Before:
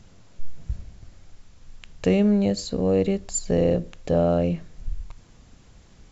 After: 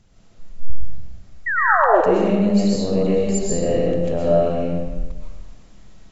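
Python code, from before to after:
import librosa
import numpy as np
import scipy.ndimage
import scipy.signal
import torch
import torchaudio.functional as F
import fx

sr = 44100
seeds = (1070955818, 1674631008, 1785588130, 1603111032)

y = fx.rider(x, sr, range_db=10, speed_s=0.5)
y = fx.spec_paint(y, sr, seeds[0], shape='fall', start_s=1.46, length_s=0.55, low_hz=320.0, high_hz=2000.0, level_db=-18.0)
y = fx.rev_freeverb(y, sr, rt60_s=1.3, hf_ratio=0.7, predelay_ms=85, drr_db=-6.0)
y = y * 10.0 ** (-3.5 / 20.0)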